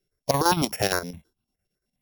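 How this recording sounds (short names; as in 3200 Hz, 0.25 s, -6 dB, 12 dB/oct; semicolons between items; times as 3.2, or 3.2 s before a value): a buzz of ramps at a fixed pitch in blocks of 8 samples; chopped level 8.8 Hz, depth 60%, duty 70%; notches that jump at a steady rate 9.7 Hz 260–1900 Hz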